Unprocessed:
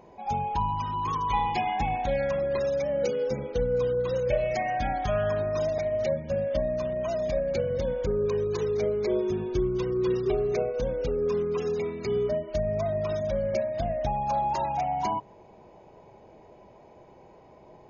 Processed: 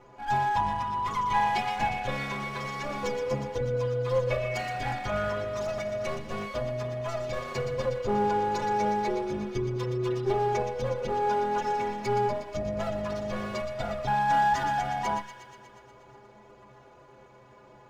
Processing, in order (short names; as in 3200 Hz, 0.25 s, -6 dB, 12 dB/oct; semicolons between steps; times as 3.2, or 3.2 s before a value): minimum comb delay 8.1 ms; metallic resonator 61 Hz, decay 0.29 s, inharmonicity 0.03; thin delay 0.12 s, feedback 71%, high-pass 1800 Hz, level -8 dB; gain +8 dB